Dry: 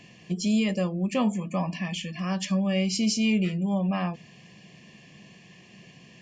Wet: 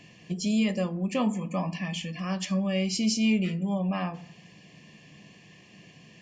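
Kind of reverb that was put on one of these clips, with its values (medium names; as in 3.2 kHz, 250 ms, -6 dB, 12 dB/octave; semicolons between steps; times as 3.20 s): FDN reverb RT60 0.65 s, low-frequency decay 1.35×, high-frequency decay 0.45×, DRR 11.5 dB; trim -1.5 dB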